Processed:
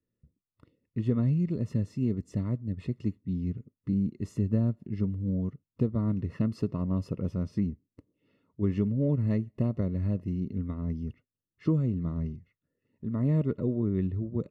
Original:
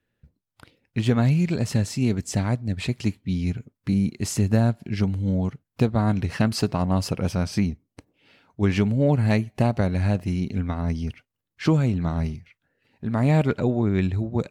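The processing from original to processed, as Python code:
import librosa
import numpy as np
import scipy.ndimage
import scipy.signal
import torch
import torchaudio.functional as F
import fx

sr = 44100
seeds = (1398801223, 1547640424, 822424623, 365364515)

y = np.convolve(x, np.full(56, 1.0 / 56))[:len(x)]
y = fx.tilt_eq(y, sr, slope=2.0)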